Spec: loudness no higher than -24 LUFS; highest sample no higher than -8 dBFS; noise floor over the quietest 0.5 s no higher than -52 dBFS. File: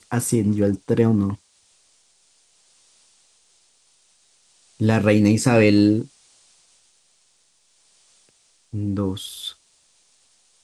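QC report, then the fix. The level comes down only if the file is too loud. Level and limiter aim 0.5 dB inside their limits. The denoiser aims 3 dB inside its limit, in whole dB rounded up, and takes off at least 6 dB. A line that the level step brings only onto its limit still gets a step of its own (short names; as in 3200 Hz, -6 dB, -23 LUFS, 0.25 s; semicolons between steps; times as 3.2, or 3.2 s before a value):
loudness -20.0 LUFS: fail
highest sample -4.0 dBFS: fail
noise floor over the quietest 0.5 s -62 dBFS: OK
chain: gain -4.5 dB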